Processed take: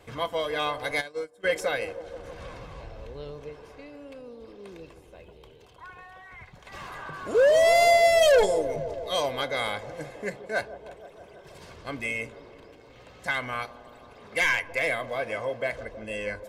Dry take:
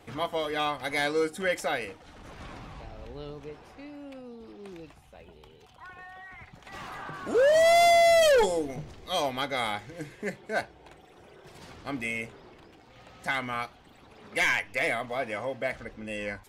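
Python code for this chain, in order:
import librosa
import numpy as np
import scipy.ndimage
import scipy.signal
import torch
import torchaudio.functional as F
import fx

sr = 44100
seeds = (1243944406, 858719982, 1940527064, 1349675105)

y = x + 0.37 * np.pad(x, (int(1.9 * sr / 1000.0), 0))[:len(x)]
y = fx.echo_wet_bandpass(y, sr, ms=160, feedback_pct=76, hz=450.0, wet_db=-12.5)
y = fx.upward_expand(y, sr, threshold_db=-32.0, expansion=2.5, at=(1.0, 1.43), fade=0.02)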